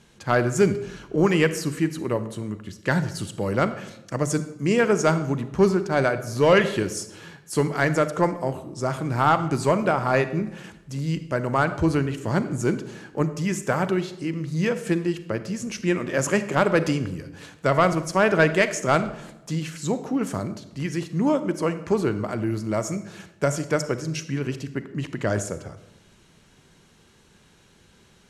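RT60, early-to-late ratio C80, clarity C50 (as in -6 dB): 0.95 s, 14.5 dB, 12.5 dB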